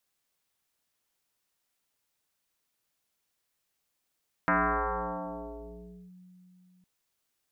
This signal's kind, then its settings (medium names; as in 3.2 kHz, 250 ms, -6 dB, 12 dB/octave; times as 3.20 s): FM tone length 2.36 s, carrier 182 Hz, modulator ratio 1.3, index 7, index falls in 1.63 s linear, decay 3.56 s, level -21 dB